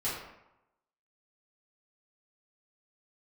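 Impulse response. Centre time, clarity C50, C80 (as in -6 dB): 58 ms, 2.0 dB, 5.0 dB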